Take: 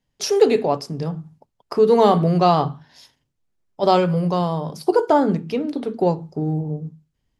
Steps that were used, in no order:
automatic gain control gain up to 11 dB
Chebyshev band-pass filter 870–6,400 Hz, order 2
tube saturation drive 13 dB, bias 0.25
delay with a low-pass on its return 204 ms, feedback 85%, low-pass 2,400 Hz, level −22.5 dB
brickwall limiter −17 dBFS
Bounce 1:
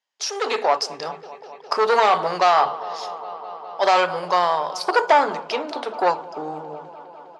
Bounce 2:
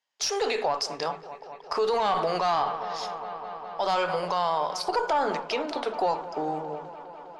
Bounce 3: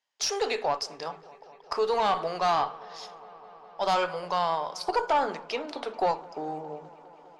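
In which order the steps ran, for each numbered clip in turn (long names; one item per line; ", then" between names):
delay with a low-pass on its return, then tube saturation, then Chebyshev band-pass filter, then brickwall limiter, then automatic gain control
Chebyshev band-pass filter, then tube saturation, then automatic gain control, then delay with a low-pass on its return, then brickwall limiter
automatic gain control, then Chebyshev band-pass filter, then tube saturation, then brickwall limiter, then delay with a low-pass on its return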